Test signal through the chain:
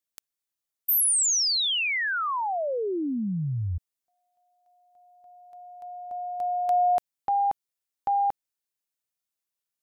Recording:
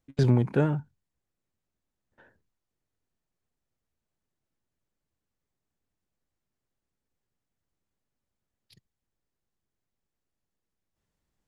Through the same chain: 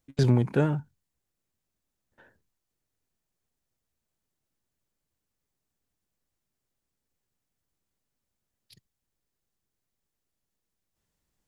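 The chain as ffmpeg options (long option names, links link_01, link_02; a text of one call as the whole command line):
ffmpeg -i in.wav -af "highshelf=frequency=4200:gain=6.5" out.wav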